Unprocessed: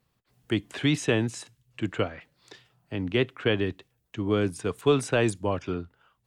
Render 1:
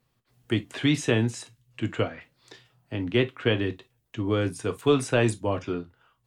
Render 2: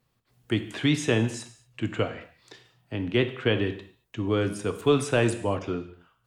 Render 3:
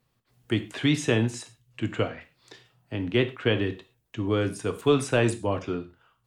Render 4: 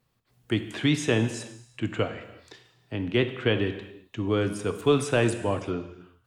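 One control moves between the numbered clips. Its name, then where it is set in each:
non-linear reverb, gate: 80, 260, 150, 400 ms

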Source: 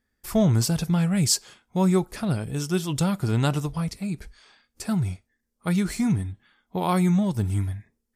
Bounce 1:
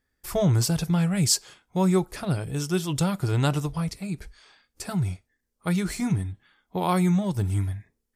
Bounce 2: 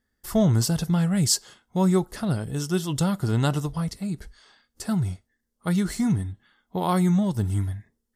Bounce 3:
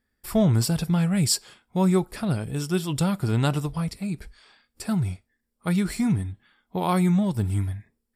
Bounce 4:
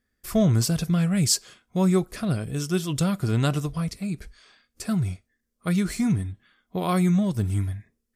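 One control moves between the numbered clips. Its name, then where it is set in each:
notch, frequency: 220, 2400, 6300, 870 Hz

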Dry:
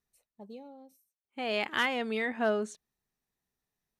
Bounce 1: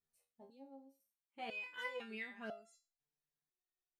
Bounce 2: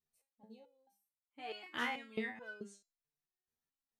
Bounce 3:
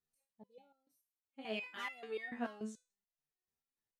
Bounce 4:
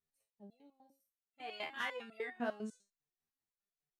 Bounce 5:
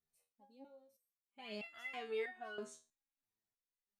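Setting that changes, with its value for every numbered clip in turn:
stepped resonator, rate: 2, 4.6, 6.9, 10, 3.1 Hz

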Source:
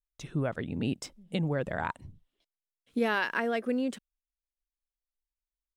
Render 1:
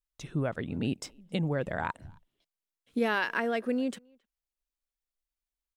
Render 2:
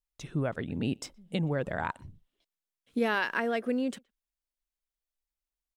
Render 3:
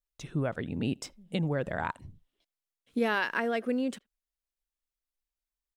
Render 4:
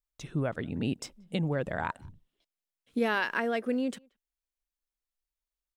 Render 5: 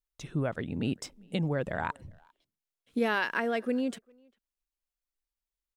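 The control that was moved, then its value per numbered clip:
speakerphone echo, time: 270, 120, 80, 180, 400 ms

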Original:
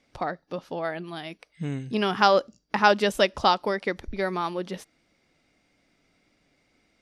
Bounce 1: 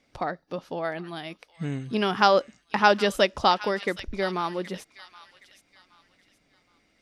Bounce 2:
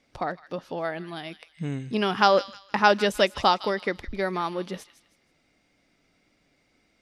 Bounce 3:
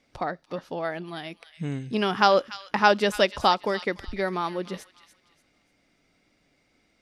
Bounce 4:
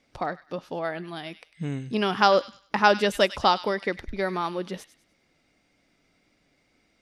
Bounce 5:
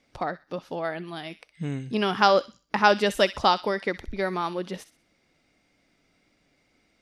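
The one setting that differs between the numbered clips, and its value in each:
thin delay, time: 770, 158, 291, 99, 63 ms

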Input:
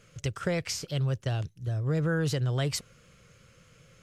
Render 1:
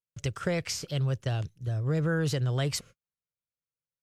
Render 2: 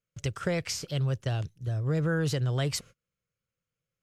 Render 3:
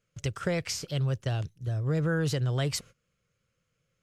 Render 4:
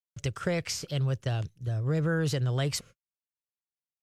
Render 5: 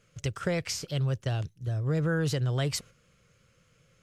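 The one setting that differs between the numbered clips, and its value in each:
gate, range: -47, -32, -20, -60, -7 dB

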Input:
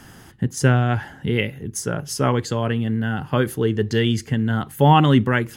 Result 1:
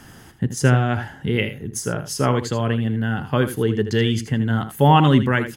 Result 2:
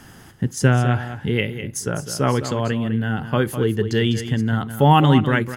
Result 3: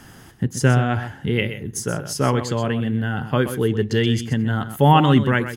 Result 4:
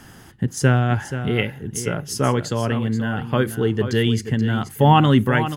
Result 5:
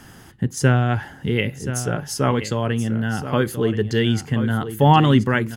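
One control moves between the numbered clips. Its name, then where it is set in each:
echo, time: 79, 204, 127, 480, 1028 ms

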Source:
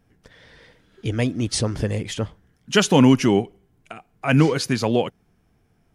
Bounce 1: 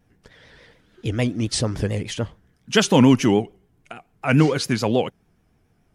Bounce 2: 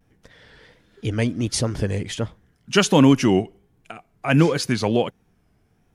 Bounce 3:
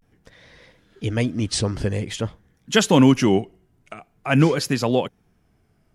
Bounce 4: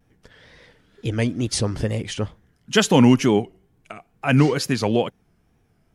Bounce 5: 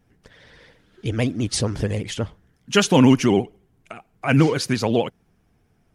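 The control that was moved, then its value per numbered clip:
vibrato, rate: 6.9, 1.4, 0.47, 2.2, 15 Hz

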